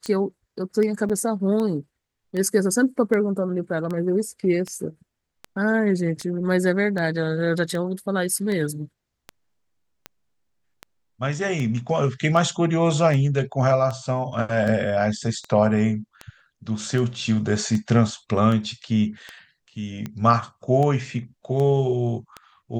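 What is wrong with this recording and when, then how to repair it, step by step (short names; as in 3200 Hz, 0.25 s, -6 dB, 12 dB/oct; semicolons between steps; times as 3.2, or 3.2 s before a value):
tick 78 rpm -17 dBFS
1.09–1.1 gap 7 ms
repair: de-click; interpolate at 1.09, 7 ms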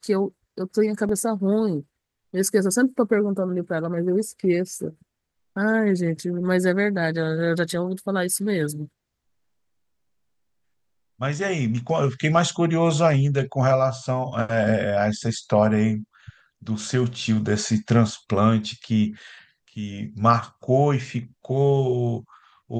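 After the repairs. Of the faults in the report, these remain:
none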